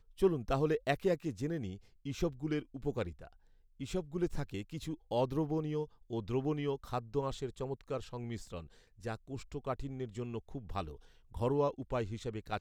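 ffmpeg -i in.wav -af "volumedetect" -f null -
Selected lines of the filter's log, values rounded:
mean_volume: -36.9 dB
max_volume: -16.8 dB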